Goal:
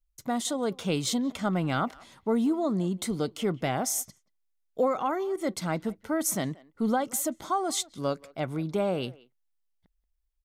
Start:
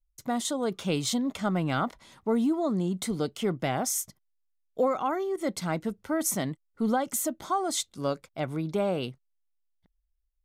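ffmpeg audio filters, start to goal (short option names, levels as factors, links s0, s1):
-filter_complex "[0:a]asplit=2[s0][s1];[s1]adelay=180,highpass=300,lowpass=3400,asoftclip=type=hard:threshold=0.0631,volume=0.0891[s2];[s0][s2]amix=inputs=2:normalize=0"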